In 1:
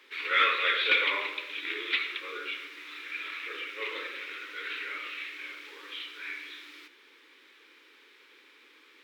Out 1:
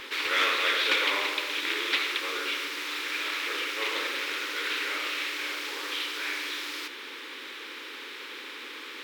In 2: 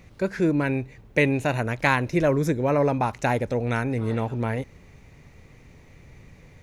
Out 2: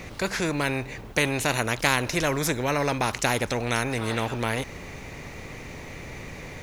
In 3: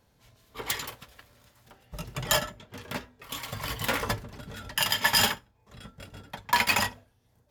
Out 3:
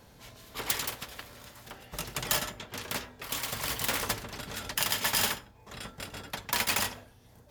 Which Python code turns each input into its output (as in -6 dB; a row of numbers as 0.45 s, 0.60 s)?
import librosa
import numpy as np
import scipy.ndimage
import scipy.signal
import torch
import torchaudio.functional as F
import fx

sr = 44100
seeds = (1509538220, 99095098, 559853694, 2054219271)

y = fx.spectral_comp(x, sr, ratio=2.0)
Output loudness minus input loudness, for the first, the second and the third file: +1.5 LU, -1.5 LU, -3.5 LU